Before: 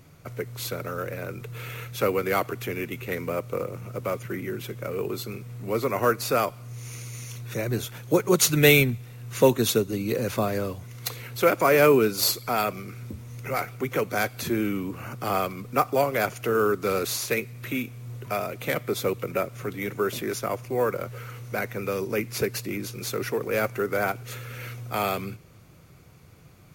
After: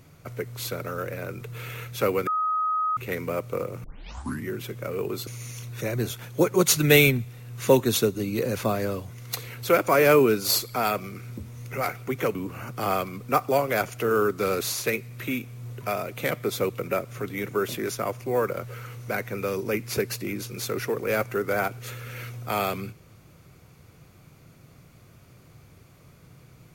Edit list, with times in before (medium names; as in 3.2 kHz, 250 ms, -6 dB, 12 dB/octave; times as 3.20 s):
2.27–2.97 s: bleep 1.26 kHz -22 dBFS
3.84 s: tape start 0.65 s
5.27–7.00 s: delete
14.08–14.79 s: delete